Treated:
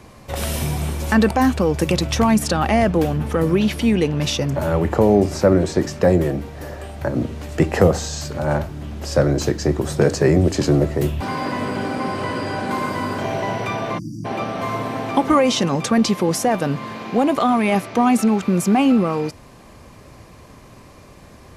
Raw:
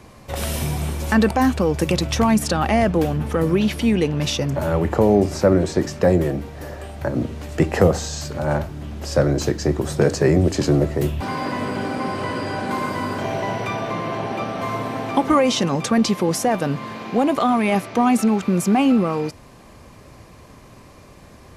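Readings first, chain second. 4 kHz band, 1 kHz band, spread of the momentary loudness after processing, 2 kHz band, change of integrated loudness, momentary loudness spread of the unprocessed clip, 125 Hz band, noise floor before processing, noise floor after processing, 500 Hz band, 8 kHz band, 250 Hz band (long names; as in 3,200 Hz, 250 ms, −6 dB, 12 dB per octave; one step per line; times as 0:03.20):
+1.0 dB, +1.0 dB, 9 LU, +1.0 dB, +1.0 dB, 9 LU, +1.0 dB, −45 dBFS, −44 dBFS, +1.0 dB, +1.0 dB, +1.0 dB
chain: time-frequency box erased 0:13.99–0:14.25, 340–4,600 Hz
level +1 dB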